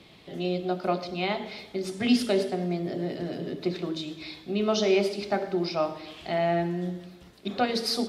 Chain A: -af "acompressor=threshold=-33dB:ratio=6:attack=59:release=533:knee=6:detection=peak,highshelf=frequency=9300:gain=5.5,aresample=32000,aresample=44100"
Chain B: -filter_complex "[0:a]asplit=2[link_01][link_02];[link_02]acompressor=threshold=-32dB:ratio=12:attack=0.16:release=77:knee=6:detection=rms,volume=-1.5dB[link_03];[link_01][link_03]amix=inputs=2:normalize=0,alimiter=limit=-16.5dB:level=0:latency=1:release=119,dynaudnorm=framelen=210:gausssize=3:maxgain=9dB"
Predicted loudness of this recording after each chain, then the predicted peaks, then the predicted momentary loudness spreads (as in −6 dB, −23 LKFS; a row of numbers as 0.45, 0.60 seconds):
−36.0, −19.5 LKFS; −19.0, −7.5 dBFS; 6, 8 LU